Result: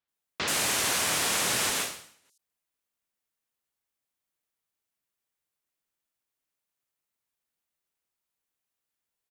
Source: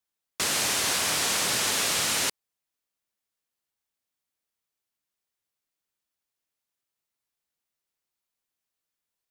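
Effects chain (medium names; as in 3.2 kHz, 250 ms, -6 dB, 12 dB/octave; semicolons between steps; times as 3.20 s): bands offset in time lows, highs 80 ms, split 4.8 kHz; 1.69–2.25 s: valve stage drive 18 dB, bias 0.4; endings held to a fixed fall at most 100 dB/s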